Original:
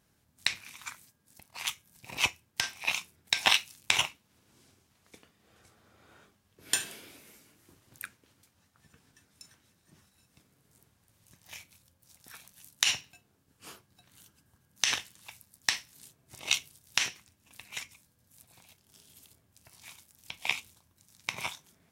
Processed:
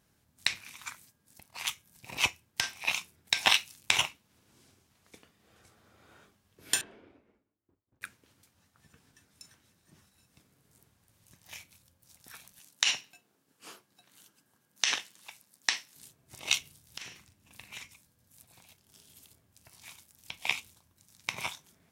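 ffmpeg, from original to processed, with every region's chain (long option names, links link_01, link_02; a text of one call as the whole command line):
ffmpeg -i in.wav -filter_complex "[0:a]asettb=1/sr,asplit=3[link_01][link_02][link_03];[link_01]atrim=end=6.814[link_04];[link_02]atrim=start=6.81:end=8.02,asetpts=PTS-STARTPTS,afade=type=in:duration=0.004:curve=qsin,afade=type=out:start_time=1.206:duration=0.004:curve=qsin,agate=range=-33dB:threshold=-52dB:ratio=3:release=100:detection=peak,adynamicsmooth=sensitivity=2.5:basefreq=1100,equalizer=frequency=150:width=2.3:gain=-7.5[link_05];[link_03]atrim=start=8.016[link_06];[link_04][link_05]acrossfade=duration=0.004:curve1=hsin:curve2=qsin[link_07];[link_07][link_06]acrossfade=duration=0.004:curve1=qsin:curve2=hsin,asettb=1/sr,asplit=3[link_08][link_09][link_10];[link_08]atrim=end=12.594[link_11];[link_09]atrim=start=12.59:end=15.96,asetpts=PTS-STARTPTS,afade=type=in:duration=0.004:curve=qsin,afade=type=out:start_time=3.366:duration=0.004:curve=qsin,acrossover=split=8700[link_12][link_13];[link_13]acompressor=threshold=-56dB:ratio=4:attack=1:release=60[link_14];[link_12][link_14]amix=inputs=2:normalize=0,highpass=220[link_15];[link_10]atrim=start=15.956[link_16];[link_11][link_15]acrossfade=duration=0.004:curve1=hsin:curve2=qsin[link_17];[link_17][link_16]acrossfade=duration=0.004:curve1=qsin:curve2=hsin,asettb=1/sr,asplit=3[link_18][link_19][link_20];[link_18]atrim=end=16.614[link_21];[link_19]atrim=start=16.61:end=17.85,asetpts=PTS-STARTPTS,afade=type=in:duration=0.004:curve=qsin,afade=type=out:start_time=1.236:duration=0.004:curve=qsin,bass=frequency=250:gain=4,treble=frequency=4000:gain=-2,acompressor=threshold=-39dB:ratio=8:attack=3.2:release=140:knee=1:detection=peak,asplit=2[link_22][link_23];[link_23]adelay=41,volume=-9dB[link_24];[link_22][link_24]amix=inputs=2:normalize=0,atrim=end_sample=54684[link_25];[link_20]atrim=start=17.846[link_26];[link_21][link_25]acrossfade=duration=0.004:curve1=hsin:curve2=qsin[link_27];[link_27][link_26]acrossfade=duration=0.004:curve1=qsin:curve2=hsin" out.wav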